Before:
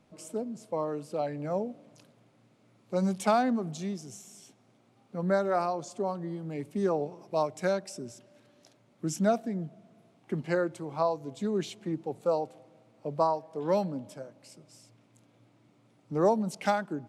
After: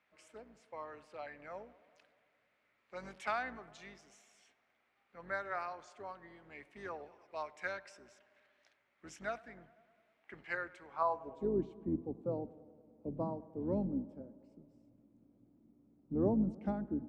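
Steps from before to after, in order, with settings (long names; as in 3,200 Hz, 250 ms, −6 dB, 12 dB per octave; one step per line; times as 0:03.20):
sub-octave generator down 2 octaves, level +2 dB
band-pass filter sweep 1,900 Hz → 250 Hz, 0:10.86–0:11.64
on a send: tape delay 102 ms, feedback 80%, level −20 dB, low-pass 2,200 Hz
on the sum: level +1 dB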